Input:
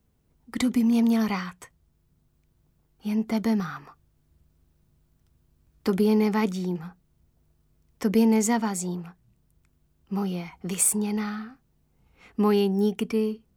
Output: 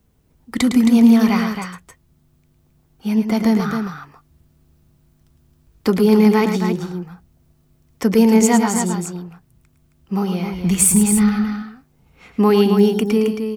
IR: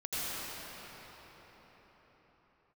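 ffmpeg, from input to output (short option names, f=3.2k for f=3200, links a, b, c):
-filter_complex "[0:a]asplit=3[a][b][c];[a]afade=t=out:st=10.52:d=0.02[d];[b]asubboost=boost=6:cutoff=160,afade=t=in:st=10.52:d=0.02,afade=t=out:st=11.35:d=0.02[e];[c]afade=t=in:st=11.35:d=0.02[f];[d][e][f]amix=inputs=3:normalize=0,aecho=1:1:107.9|268.2:0.398|0.447,volume=7.5dB"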